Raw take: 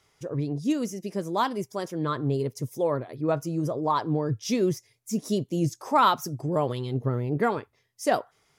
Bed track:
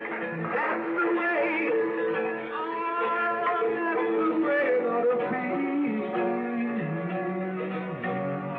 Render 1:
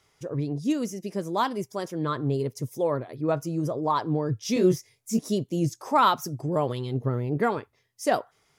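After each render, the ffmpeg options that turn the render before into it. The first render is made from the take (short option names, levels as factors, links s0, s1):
-filter_complex "[0:a]asettb=1/sr,asplit=3[s0][s1][s2];[s0]atrim=end=4.544[s3];[s1]atrim=start=4.54:end=5.19,asetpts=PTS-STARTPTS,afade=t=in:d=0.004:c=qsin,afade=t=out:st=0.646:d=0.004:c=qsin,asplit=2[s4][s5];[s5]adelay=22,volume=0.794[s6];[s4][s6]amix=inputs=2:normalize=0,atrim=end_sample=28665[s7];[s2]atrim=start=5.186[s8];[s3][s7]acrossfade=d=0.004:c1=hsin:c2=qsin[s9];[s9][s8]acrossfade=d=0.004:c1=qsin:c2=hsin"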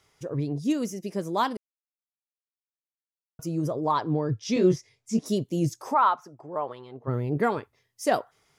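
-filter_complex "[0:a]asettb=1/sr,asplit=3[s0][s1][s2];[s0]atrim=end=3.964[s3];[s1]atrim=start=3.96:end=5.26,asetpts=PTS-STARTPTS,afade=t=in:d=0.004:c=qsin,afade=t=out:st=1.296:d=0.004:c=qsin,lowpass=5800[s4];[s2]atrim=start=5.256[s5];[s3][s4]acrossfade=d=0.004:c1=hsin:c2=qsin[s6];[s6][s5]acrossfade=d=0.004:c1=qsin:c2=hsin,asplit=3[s7][s8][s9];[s7]afade=t=out:st=5.93:d=0.02[s10];[s8]bandpass=f=1000:t=q:w=1.3,afade=t=in:st=5.93:d=0.02,afade=t=out:st=7.07:d=0.02[s11];[s9]afade=t=in:st=7.07:d=0.02[s12];[s10][s11][s12]amix=inputs=3:normalize=0,asplit=3[s13][s14][s15];[s13]atrim=end=1.57,asetpts=PTS-STARTPTS,afade=t=out:st=1.566:d=0.004:c=hsin[s16];[s14]atrim=start=1.57:end=3.39,asetpts=PTS-STARTPTS,volume=0[s17];[s15]atrim=start=3.39,asetpts=PTS-STARTPTS,afade=t=in:d=0.004:c=hsin[s18];[s16][s17][s18]concat=n=3:v=0:a=1"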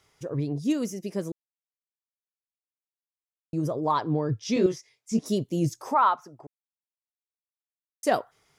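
-filter_complex "[0:a]asettb=1/sr,asplit=3[s0][s1][s2];[s0]atrim=end=4.664[s3];[s1]atrim=start=4.66:end=5.12,asetpts=PTS-STARTPTS,afade=t=in:d=0.004:c=qsin,afade=t=out:st=0.456:d=0.004:c=qsin,highpass=f=720:p=1[s4];[s2]atrim=start=5.116[s5];[s3][s4]acrossfade=d=0.004:c1=hsin:c2=qsin[s6];[s6][s5]acrossfade=d=0.004:c1=qsin:c2=hsin,asplit=5[s7][s8][s9][s10][s11];[s7]atrim=end=1.32,asetpts=PTS-STARTPTS,afade=t=out:st=1.316:d=0.004:c=hsin[s12];[s8]atrim=start=1.32:end=3.53,asetpts=PTS-STARTPTS,volume=0[s13];[s9]atrim=start=3.53:end=6.47,asetpts=PTS-STARTPTS,afade=t=in:d=0.004:c=hsin,afade=t=out:st=2.936:d=0.004:c=hsin[s14];[s10]atrim=start=6.47:end=8.03,asetpts=PTS-STARTPTS,volume=0[s15];[s11]atrim=start=8.03,asetpts=PTS-STARTPTS,afade=t=in:d=0.004:c=hsin[s16];[s12][s13][s14][s15][s16]concat=n=5:v=0:a=1"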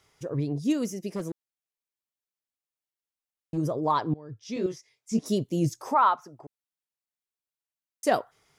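-filter_complex "[0:a]asplit=3[s0][s1][s2];[s0]afade=t=out:st=1.14:d=0.02[s3];[s1]asoftclip=type=hard:threshold=0.0473,afade=t=in:st=1.14:d=0.02,afade=t=out:st=3.56:d=0.02[s4];[s2]afade=t=in:st=3.56:d=0.02[s5];[s3][s4][s5]amix=inputs=3:normalize=0,asplit=2[s6][s7];[s6]atrim=end=4.14,asetpts=PTS-STARTPTS,afade=t=out:st=4.136:d=0.004:c=hsin:silence=0.0668344[s8];[s7]atrim=start=4.14,asetpts=PTS-STARTPTS,afade=t=in:d=1.13:silence=0.0668344[s9];[s8][s9]concat=n=2:v=0:a=1"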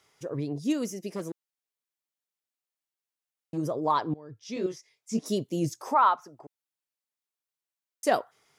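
-af "highpass=f=220:p=1"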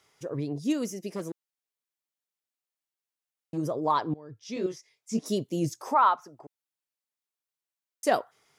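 -af anull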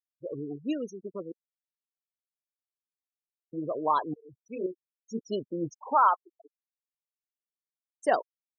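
-af "afftfilt=real='re*gte(hypot(re,im),0.0355)':imag='im*gte(hypot(re,im),0.0355)':win_size=1024:overlap=0.75,bass=f=250:g=-11,treble=f=4000:g=-3"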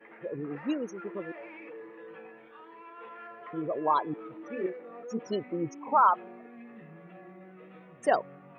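-filter_complex "[1:a]volume=0.106[s0];[0:a][s0]amix=inputs=2:normalize=0"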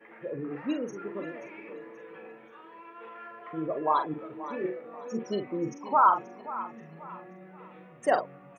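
-filter_complex "[0:a]asplit=2[s0][s1];[s1]adelay=44,volume=0.422[s2];[s0][s2]amix=inputs=2:normalize=0,aecho=1:1:531|1062|1593:0.178|0.064|0.023"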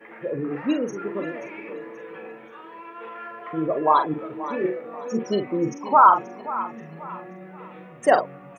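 -af "volume=2.37,alimiter=limit=0.708:level=0:latency=1"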